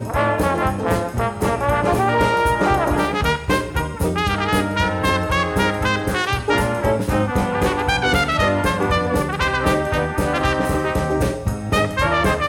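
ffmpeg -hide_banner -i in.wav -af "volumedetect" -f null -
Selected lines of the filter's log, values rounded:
mean_volume: -19.0 dB
max_volume: -4.7 dB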